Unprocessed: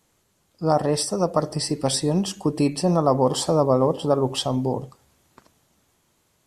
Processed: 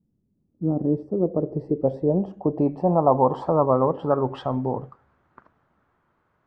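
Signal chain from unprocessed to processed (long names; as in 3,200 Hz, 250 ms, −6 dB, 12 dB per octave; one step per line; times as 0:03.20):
low-pass filter sweep 210 Hz → 1,400 Hz, 0:00.06–0:03.97
dynamic equaliser 1,200 Hz, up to −4 dB, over −40 dBFS, Q 6.6
level −2.5 dB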